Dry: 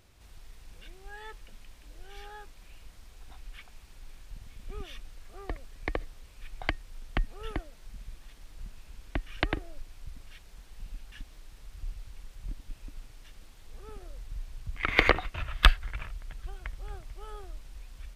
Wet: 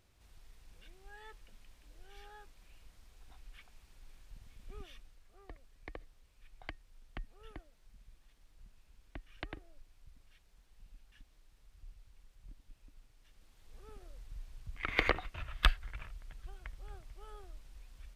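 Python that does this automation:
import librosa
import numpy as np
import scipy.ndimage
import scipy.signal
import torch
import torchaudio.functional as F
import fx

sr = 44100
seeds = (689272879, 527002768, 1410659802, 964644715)

y = fx.gain(x, sr, db=fx.line((4.83, -8.5), (5.23, -15.0), (13.16, -15.0), (13.78, -8.0)))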